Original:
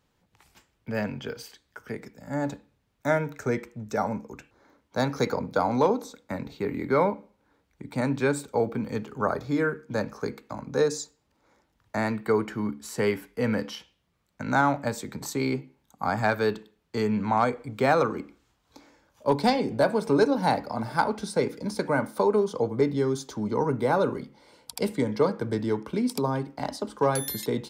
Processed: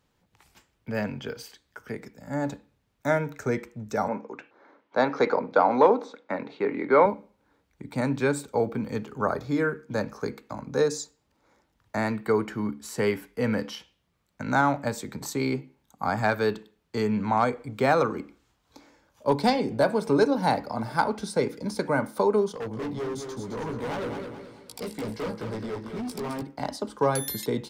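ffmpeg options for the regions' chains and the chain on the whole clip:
-filter_complex "[0:a]asettb=1/sr,asplit=3[s0][s1][s2];[s0]atrim=end=4.084[s3];[s1]atrim=start=4.08:end=7.06,asetpts=PTS-STARTPTS,afade=t=in:d=0.004:c=qsin,afade=t=out:st=2.976:d=0.004:c=qsin,acontrast=35,highpass=330,lowpass=2700[s4];[s2]atrim=start=7.056[s5];[s3][s4]acrossfade=d=0.004:c1=hsin:c2=qsin[s6];[s6][s5]acrossfade=d=0.004:c1=qsin:c2=hsin,asettb=1/sr,asplit=3[s7][s8][s9];[s7]atrim=end=22.524[s10];[s8]atrim=start=22.52:end=26.42,asetpts=PTS-STARTPTS,afade=t=in:d=0.004:c=qsin,afade=t=out:st=3.896:d=0.004:c=qsin,flanger=delay=16.5:depth=2:speed=2.2,asoftclip=type=hard:threshold=0.0316,aecho=1:1:213|426|639|852:0.473|0.18|0.0683|0.026,atrim=end_sample=171990[s11];[s9]atrim=start=26.416[s12];[s10][s11]acrossfade=d=0.004:c1=hsin:c2=qsin[s13];[s13][s12]acrossfade=d=0.004:c1=qsin:c2=hsin"

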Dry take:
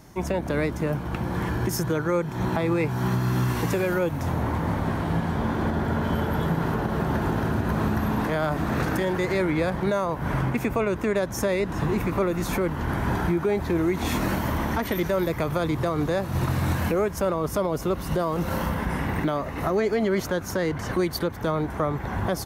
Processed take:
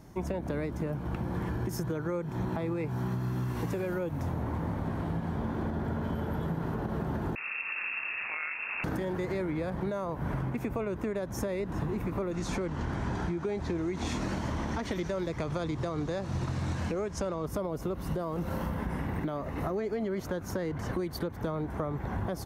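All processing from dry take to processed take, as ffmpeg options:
-filter_complex "[0:a]asettb=1/sr,asplit=3[s0][s1][s2];[s0]atrim=end=7.354[s3];[s1]atrim=start=7.35:end=8.84,asetpts=PTS-STARTPTS,afade=t=in:d=0.004:c=qsin,afade=t=out:st=1.486:d=0.004:c=qsin,tremolo=f=200:d=0.71,lowpass=f=2400:t=q:w=0.5098,lowpass=f=2400:t=q:w=0.6013,lowpass=f=2400:t=q:w=0.9,lowpass=f=2400:t=q:w=2.563,afreqshift=-2800[s4];[s2]atrim=start=8.836[s5];[s3][s4]acrossfade=d=0.004:c1=hsin:c2=qsin[s6];[s6][s5]acrossfade=d=0.004:c1=qsin:c2=hsin,asettb=1/sr,asplit=3[s7][s8][s9];[s7]atrim=end=12.314[s10];[s8]atrim=start=12.31:end=17.46,asetpts=PTS-STARTPTS,afade=t=in:d=0.004:c=qsin,afade=t=out:st=5.146:d=0.004:c=qsin,lowpass=f=6800:w=0.5412,lowpass=f=6800:w=1.3066,aemphasis=mode=production:type=75kf[s11];[s9]atrim=start=17.456[s12];[s10][s11]acrossfade=d=0.004:c1=hsin:c2=qsin[s13];[s13][s12]acrossfade=d=0.004:c1=qsin:c2=hsin,tiltshelf=f=970:g=3.5,acompressor=threshold=0.0631:ratio=6,volume=0.562"

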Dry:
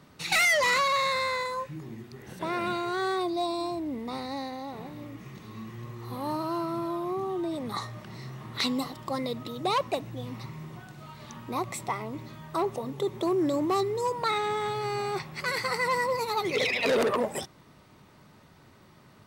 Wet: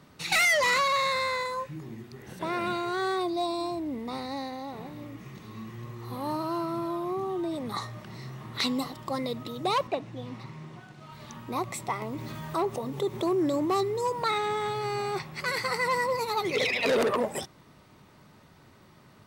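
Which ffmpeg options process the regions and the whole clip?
-filter_complex "[0:a]asettb=1/sr,asplit=3[s0][s1][s2];[s0]atrim=end=9.874[s3];[s1]atrim=start=9.87:end=11.12,asetpts=PTS-STARTPTS,afade=t=in:d=0.004:c=qsin,afade=t=out:st=1.246:d=0.004:c=qsin,acrossover=split=3500[s4][s5];[s5]acompressor=threshold=0.002:ratio=4:attack=1:release=60[s6];[s4][s6]amix=inputs=2:normalize=0,highpass=110,lowpass=6600,aeval=exprs='sgn(val(0))*max(abs(val(0))-0.00119,0)':c=same[s7];[s2]atrim=start=11.116[s8];[s3][s7]acrossfade=d=0.004:c1=hsin:c2=qsin[s9];[s9][s8]acrossfade=d=0.004:c1=qsin:c2=hsin,asettb=1/sr,asplit=3[s10][s11][s12];[s10]atrim=end=12.024[s13];[s11]atrim=start=12.02:end=14.45,asetpts=PTS-STARTPTS,afade=t=in:d=0.004:c=qsin,afade=t=out:st=2.426:d=0.004:c=qsin,aeval=exprs='val(0)*gte(abs(val(0)),0.00224)':c=same,acompressor=mode=upward:threshold=0.0355:ratio=2.5:attack=3.2:release=140:knee=2.83:detection=peak[s14];[s12]atrim=start=14.446[s15];[s13][s14]acrossfade=d=0.004:c1=hsin:c2=qsin[s16];[s16][s15]acrossfade=d=0.004:c1=qsin:c2=hsin"

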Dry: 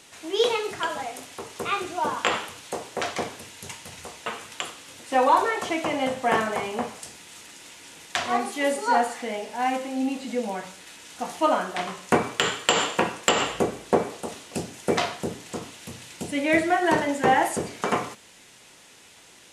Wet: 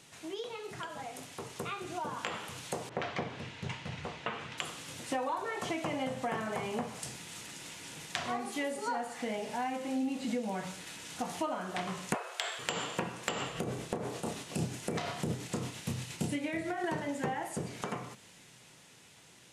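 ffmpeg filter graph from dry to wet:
-filter_complex "[0:a]asettb=1/sr,asplit=3[s0][s1][s2];[s0]atrim=end=2.894[s3];[s1]atrim=start=2.89:end=4.58,asetpts=PTS-STARTPTS,afade=t=in:d=0.004:c=qsin,afade=t=out:st=1.686:d=0.004:c=qsin,lowpass=2700,adynamicequalizer=threshold=0.00447:dfrequency=2100:dqfactor=0.7:tfrequency=2100:tqfactor=0.7:attack=5:release=100:ratio=0.375:range=2:mode=boostabove:tftype=highshelf[s4];[s2]atrim=start=4.576[s5];[s3][s4]acrossfade=d=0.004:c1=hsin:c2=qsin[s6];[s6][s5]acrossfade=d=0.004:c1=qsin:c2=hsin,asettb=1/sr,asplit=3[s7][s8][s9];[s7]atrim=end=12.144[s10];[s8]atrim=start=12.14:end=12.59,asetpts=PTS-STARTPTS,afade=t=in:d=0.004:c=qsin,afade=t=out:st=0.446:d=0.004:c=qsin,highpass=f=230:p=1,afreqshift=250[s11];[s9]atrim=start=12.586[s12];[s10][s11]acrossfade=d=0.004:c1=hsin:c2=qsin[s13];[s13][s12]acrossfade=d=0.004:c1=qsin:c2=hsin,asettb=1/sr,asplit=3[s14][s15][s16];[s14]atrim=end=13.484[s17];[s15]atrim=start=13.48:end=16.84,asetpts=PTS-STARTPTS,afade=t=in:d=0.004:c=qsin,afade=t=out:st=3.356:d=0.004:c=qsin,acompressor=threshold=0.0398:ratio=2.5:attack=3.2:release=140:knee=1:detection=peak,asplit=2[s18][s19];[s19]adelay=31,volume=0.501[s20];[s18][s20]amix=inputs=2:normalize=0,atrim=end_sample=148176,tremolo=f=8.7:d=0.37[s21];[s16]atrim=start=16.836[s22];[s17][s21]acrossfade=d=0.004:c1=hsin:c2=qsin[s23];[s23][s22]acrossfade=d=0.004:c1=qsin:c2=hsin,acompressor=threshold=0.0251:ratio=6,equalizer=f=140:w=1.5:g=11.5,dynaudnorm=f=130:g=31:m=2,volume=0.447"

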